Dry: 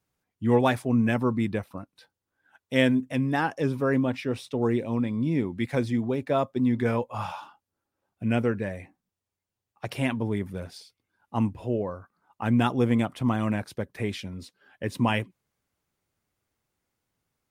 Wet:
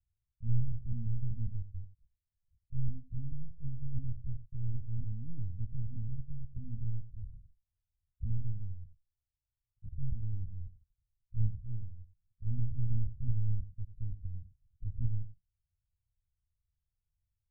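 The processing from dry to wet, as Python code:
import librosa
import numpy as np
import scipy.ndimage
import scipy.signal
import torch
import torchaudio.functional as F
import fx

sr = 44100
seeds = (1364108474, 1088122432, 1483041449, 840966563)

y = fx.lpc_vocoder(x, sr, seeds[0], excitation='pitch_kept', order=8)
y = scipy.signal.sosfilt(scipy.signal.cheby2(4, 80, 640.0, 'lowpass', fs=sr, output='sos'), y)
y = y + 10.0 ** (-13.5 / 20.0) * np.pad(y, (int(90 * sr / 1000.0), 0))[:len(y)]
y = F.gain(torch.from_numpy(y), 2.0).numpy()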